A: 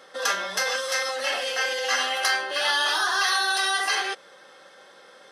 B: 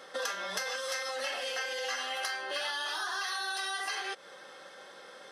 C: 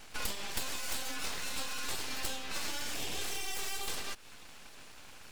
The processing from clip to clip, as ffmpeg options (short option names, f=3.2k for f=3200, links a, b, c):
-af "acompressor=threshold=-32dB:ratio=10"
-af "afreqshift=210,aexciter=amount=2.1:drive=5:freq=6.4k,aeval=exprs='abs(val(0))':c=same"